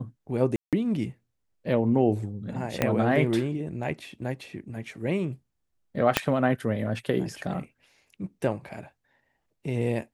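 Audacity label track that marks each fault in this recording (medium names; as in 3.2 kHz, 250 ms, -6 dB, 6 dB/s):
0.560000	0.730000	dropout 167 ms
2.820000	2.820000	pop -9 dBFS
6.170000	6.170000	pop -4 dBFS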